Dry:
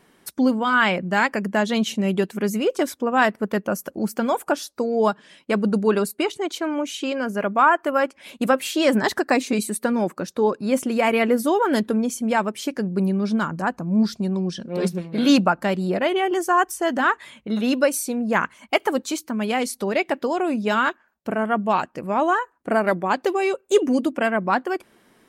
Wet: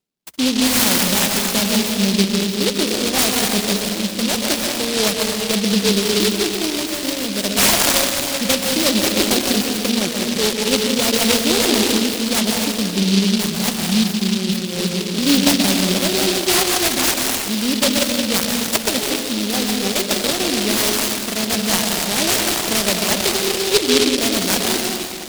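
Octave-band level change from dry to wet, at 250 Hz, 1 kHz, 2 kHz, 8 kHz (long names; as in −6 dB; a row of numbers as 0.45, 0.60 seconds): +3.5, −3.5, +2.0, +16.5 decibels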